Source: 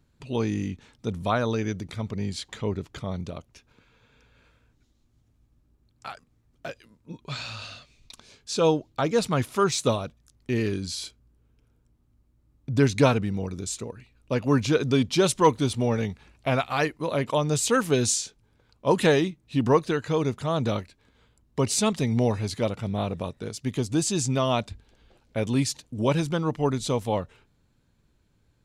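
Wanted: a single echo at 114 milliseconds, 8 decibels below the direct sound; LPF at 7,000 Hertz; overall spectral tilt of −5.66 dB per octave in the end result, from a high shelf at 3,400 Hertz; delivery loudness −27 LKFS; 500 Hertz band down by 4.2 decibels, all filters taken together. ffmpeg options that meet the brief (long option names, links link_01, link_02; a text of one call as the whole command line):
ffmpeg -i in.wav -af "lowpass=7000,equalizer=frequency=500:width_type=o:gain=-5,highshelf=frequency=3400:gain=-3.5,aecho=1:1:114:0.398,volume=0.5dB" out.wav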